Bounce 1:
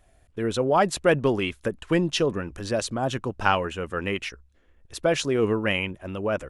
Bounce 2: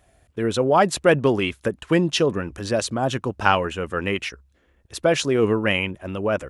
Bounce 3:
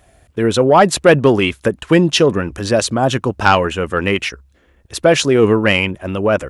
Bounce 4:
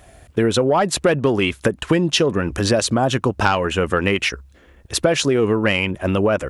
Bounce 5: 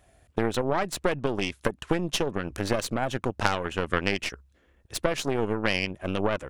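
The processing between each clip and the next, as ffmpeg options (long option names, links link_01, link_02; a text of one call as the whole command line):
ffmpeg -i in.wav -af "highpass=53,volume=3.5dB" out.wav
ffmpeg -i in.wav -af "aeval=exprs='0.891*sin(PI/2*1.58*val(0)/0.891)':channel_layout=same" out.wav
ffmpeg -i in.wav -af "acompressor=threshold=-19dB:ratio=6,volume=4.5dB" out.wav
ffmpeg -i in.wav -af "aeval=exprs='0.708*(cos(1*acos(clip(val(0)/0.708,-1,1)))-cos(1*PI/2))+0.251*(cos(2*acos(clip(val(0)/0.708,-1,1)))-cos(2*PI/2))+0.158*(cos(3*acos(clip(val(0)/0.708,-1,1)))-cos(3*PI/2))':channel_layout=same,volume=-4dB" out.wav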